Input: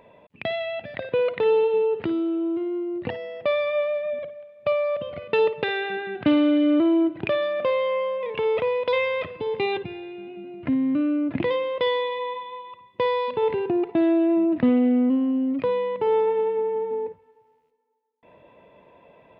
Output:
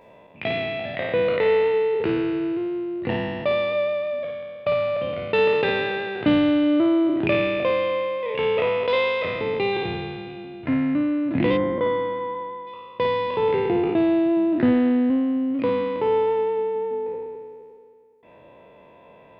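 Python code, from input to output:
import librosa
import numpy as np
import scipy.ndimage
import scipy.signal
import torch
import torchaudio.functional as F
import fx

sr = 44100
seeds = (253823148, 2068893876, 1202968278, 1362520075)

y = fx.spec_trails(x, sr, decay_s=2.14)
y = fx.savgol(y, sr, points=41, at=(11.56, 12.66), fade=0.02)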